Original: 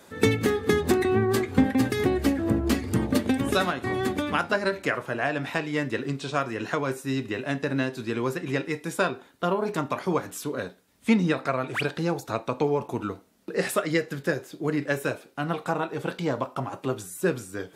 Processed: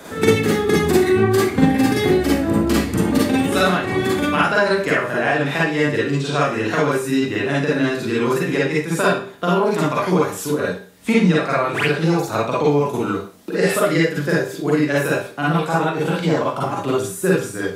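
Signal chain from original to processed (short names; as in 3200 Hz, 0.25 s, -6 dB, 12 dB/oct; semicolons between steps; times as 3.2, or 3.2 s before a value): Schroeder reverb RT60 0.35 s, DRR -6.5 dB; three-band squash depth 40%; gain +1 dB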